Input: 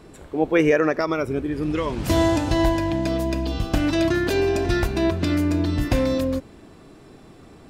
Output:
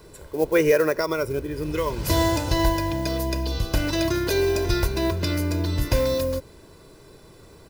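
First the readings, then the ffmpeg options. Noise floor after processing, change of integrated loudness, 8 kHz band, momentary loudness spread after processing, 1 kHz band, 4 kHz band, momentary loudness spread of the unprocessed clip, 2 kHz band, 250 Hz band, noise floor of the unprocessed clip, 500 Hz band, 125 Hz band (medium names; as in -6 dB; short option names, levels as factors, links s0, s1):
-49 dBFS, -1.5 dB, +4.0 dB, 7 LU, -1.0 dB, +2.0 dB, 6 LU, -2.0 dB, -5.0 dB, -47 dBFS, -0.5 dB, -0.5 dB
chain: -filter_complex "[0:a]aecho=1:1:2:0.54,acrossover=split=370|1900[s0][s1][s2];[s1]acrusher=bits=6:mode=log:mix=0:aa=0.000001[s3];[s0][s3][s2]amix=inputs=3:normalize=0,aexciter=amount=1.3:drive=8.4:freq=4400,volume=0.75"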